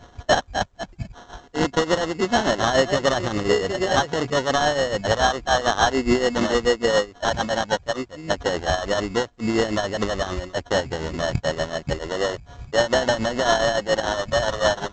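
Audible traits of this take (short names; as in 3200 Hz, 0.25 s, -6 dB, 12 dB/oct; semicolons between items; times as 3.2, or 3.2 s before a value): a buzz of ramps at a fixed pitch in blocks of 8 samples; tremolo triangle 6.9 Hz, depth 65%; aliases and images of a low sample rate 2400 Hz, jitter 0%; A-law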